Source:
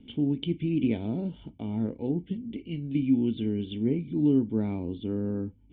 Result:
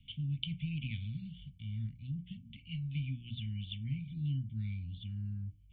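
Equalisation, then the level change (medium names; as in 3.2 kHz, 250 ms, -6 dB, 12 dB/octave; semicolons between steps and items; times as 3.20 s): elliptic band-stop 140–2500 Hz, stop band 60 dB; hum notches 60/120/180/240/300 Hz; 0.0 dB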